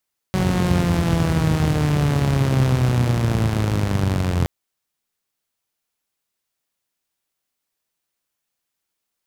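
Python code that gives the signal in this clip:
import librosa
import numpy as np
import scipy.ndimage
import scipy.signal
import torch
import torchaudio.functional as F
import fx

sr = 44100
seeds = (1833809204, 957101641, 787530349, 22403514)

y = fx.engine_four_rev(sr, seeds[0], length_s=4.12, rpm=5600, resonances_hz=(84.0, 120.0), end_rpm=2600)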